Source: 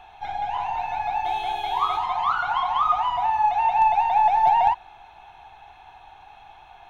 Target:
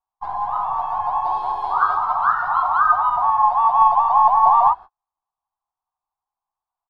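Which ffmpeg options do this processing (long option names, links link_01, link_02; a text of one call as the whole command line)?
ffmpeg -i in.wav -filter_complex "[0:a]asplit=3[link_01][link_02][link_03];[link_02]asetrate=37084,aresample=44100,atempo=1.18921,volume=-17dB[link_04];[link_03]asetrate=55563,aresample=44100,atempo=0.793701,volume=-3dB[link_05];[link_01][link_04][link_05]amix=inputs=3:normalize=0,agate=range=-45dB:threshold=-33dB:ratio=16:detection=peak,highshelf=frequency=1700:width_type=q:width=3:gain=-10.5,volume=-2dB" out.wav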